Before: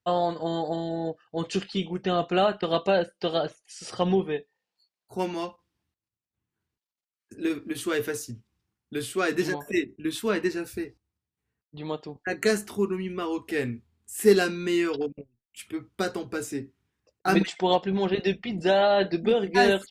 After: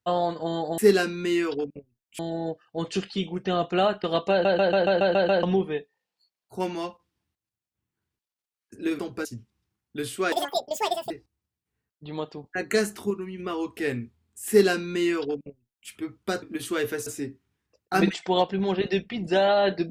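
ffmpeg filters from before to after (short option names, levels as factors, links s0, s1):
-filter_complex "[0:a]asplit=19[s0][s1][s2][s3][s4][s5][s6][s7][s8][s9][s10][s11][s12][s13][s14][s15][s16][s17][s18];[s0]atrim=end=0.782[s19];[s1]atrim=start=14.198:end=15.612[s20];[s2]atrim=start=0.778:end=3.042[s21];[s3]atrim=start=2.898:end=3.042[s22];[s4]atrim=start=2.898:end=3.042[s23];[s5]atrim=start=2.898:end=3.042[s24];[s6]atrim=start=2.898:end=3.042[s25];[s7]atrim=start=2.898:end=3.042[s26];[s8]atrim=start=2.898:end=3.042[s27];[s9]atrim=start=2.898:end=3.042[s28];[s10]atrim=start=4.018:end=7.582[s29];[s11]atrim=start=16.138:end=16.402[s30];[s12]atrim=start=8.218:end=9.294[s31];[s13]atrim=start=9.29:end=10.82,asetpts=PTS-STARTPTS,asetrate=85995,aresample=44100[s32];[s14]atrim=start=10.816:end=12.822[s33];[s15]atrim=start=12.818:end=13.112,asetpts=PTS-STARTPTS,volume=0.562[s34];[s16]atrim=start=13.108:end=16.142[s35];[s17]atrim=start=7.578:end=8.222[s36];[s18]atrim=start=16.398[s37];[s19][s20]acrossfade=d=0.004:c1=hsin:c2=hsin[s38];[s38][s21]acrossfade=d=0.004:c1=hsin:c2=hsin[s39];[s39][s22]acrossfade=d=0.004:c1=hsin:c2=hsin[s40];[s40][s23]acrossfade=d=0.004:c1=hsin:c2=hsin[s41];[s41][s24]acrossfade=d=0.004:c1=hsin:c2=hsin[s42];[s42][s25]acrossfade=d=0.004:c1=hsin:c2=hsin[s43];[s43][s26]acrossfade=d=0.004:c1=hsin:c2=hsin[s44];[s44][s27]acrossfade=d=0.004:c1=hsin:c2=hsin[s45];[s45][s28]acrossfade=d=0.004:c1=hsin:c2=hsin[s46];[s46][s29]acrossfade=d=0.004:c1=hsin:c2=hsin[s47];[s47][s30]acrossfade=d=0.004:c1=hsin:c2=hsin[s48];[s48][s31]acrossfade=d=0.004:c1=hsin:c2=hsin[s49];[s49][s32]acrossfade=d=0.004:c1=hsin:c2=hsin[s50];[s50][s33]acrossfade=d=0.004:c1=hsin:c2=hsin[s51];[s51][s34]acrossfade=d=0.004:c1=hsin:c2=hsin[s52];[s52][s35]acrossfade=d=0.004:c1=hsin:c2=hsin[s53];[s53][s36]acrossfade=d=0.004:c1=hsin:c2=hsin[s54];[s54][s37]acrossfade=d=0.004:c1=hsin:c2=hsin"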